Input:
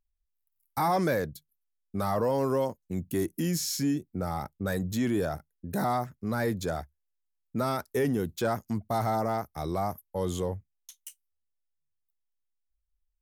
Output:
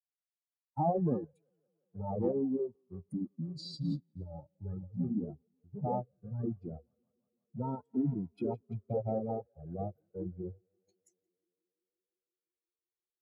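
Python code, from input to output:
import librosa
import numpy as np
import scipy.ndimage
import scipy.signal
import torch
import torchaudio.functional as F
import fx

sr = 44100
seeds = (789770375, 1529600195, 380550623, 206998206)

y = fx.spec_expand(x, sr, power=3.3)
y = scipy.signal.sosfilt(scipy.signal.butter(2, 75.0, 'highpass', fs=sr, output='sos'), y)
y = fx.echo_tape(y, sr, ms=173, feedback_pct=83, wet_db=-21.5, lp_hz=2900.0, drive_db=19.0, wow_cents=38)
y = fx.formant_shift(y, sr, semitones=-6)
y = fx.upward_expand(y, sr, threshold_db=-43.0, expansion=2.5)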